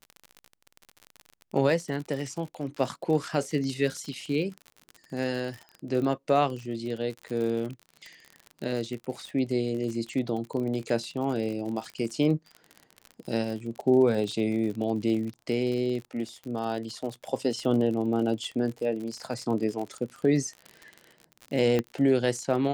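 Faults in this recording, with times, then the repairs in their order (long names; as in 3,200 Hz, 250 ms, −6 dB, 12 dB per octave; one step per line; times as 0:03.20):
surface crackle 47 per second −33 dBFS
0:21.79: click −14 dBFS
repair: click removal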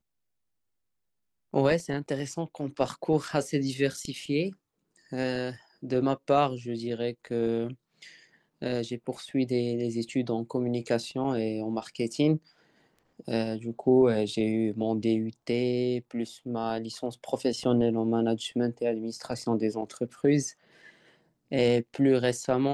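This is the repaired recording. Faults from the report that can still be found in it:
none of them is left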